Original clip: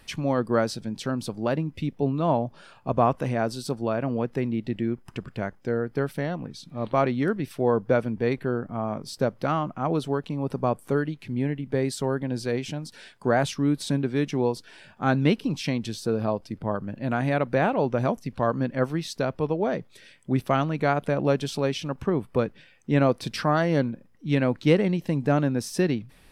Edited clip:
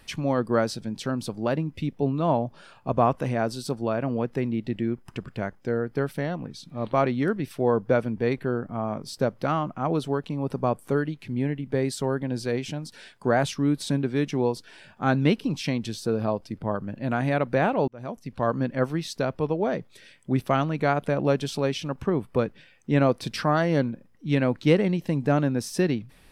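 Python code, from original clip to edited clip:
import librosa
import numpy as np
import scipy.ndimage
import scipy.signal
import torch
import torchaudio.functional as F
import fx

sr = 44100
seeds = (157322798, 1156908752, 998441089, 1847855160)

y = fx.edit(x, sr, fx.fade_in_span(start_s=17.88, length_s=0.62), tone=tone)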